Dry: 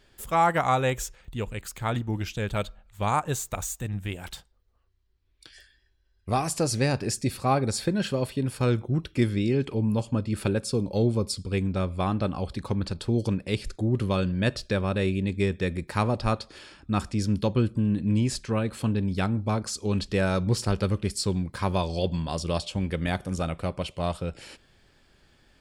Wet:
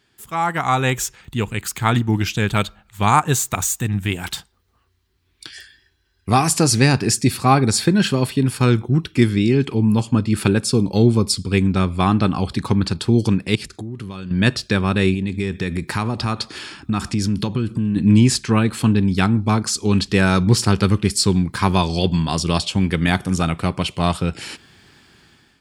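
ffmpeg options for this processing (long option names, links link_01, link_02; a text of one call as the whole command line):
ffmpeg -i in.wav -filter_complex "[0:a]asettb=1/sr,asplit=3[link_01][link_02][link_03];[link_01]atrim=end=13.554[link_04];[link_02]atrim=start=13.55:end=14.31,asetpts=PTS-STARTPTS,afade=type=in:duration=0.004:curve=qsin,afade=type=out:start_time=0.756:duration=0.004:curve=qsin,acompressor=threshold=-35dB:ratio=16:attack=3.2:release=140:knee=1:detection=peak[link_05];[link_03]atrim=start=14.306[link_06];[link_04][link_05]acrossfade=duration=0.004:curve1=hsin:curve2=qsin[link_07];[link_07][link_06]acrossfade=duration=0.004:curve1=qsin:curve2=hsin,asettb=1/sr,asplit=3[link_08][link_09][link_10];[link_08]atrim=end=15.144[link_11];[link_09]atrim=start=15.14:end=17.96,asetpts=PTS-STARTPTS,afade=type=in:duration=0.004:curve=qsin,afade=type=out:start_time=2.816:duration=0.004:curve=qsin,acompressor=threshold=-29dB:ratio=5:attack=3.2:release=140:knee=1:detection=peak[link_12];[link_10]atrim=start=17.956[link_13];[link_11][link_12]acrossfade=duration=0.004:curve1=hsin:curve2=qsin[link_14];[link_14][link_13]acrossfade=duration=0.004:curve1=qsin:curve2=hsin,highpass=100,equalizer=frequency=560:width_type=o:width=0.52:gain=-11.5,dynaudnorm=framelen=290:gausssize=5:maxgain=14dB" out.wav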